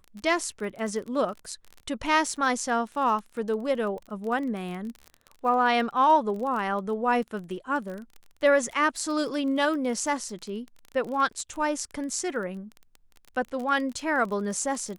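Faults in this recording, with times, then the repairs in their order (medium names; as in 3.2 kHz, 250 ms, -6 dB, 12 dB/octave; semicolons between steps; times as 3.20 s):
crackle 25 per s -33 dBFS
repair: de-click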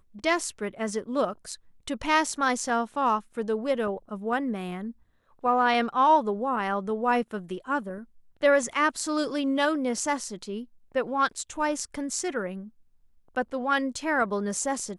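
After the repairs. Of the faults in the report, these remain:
nothing left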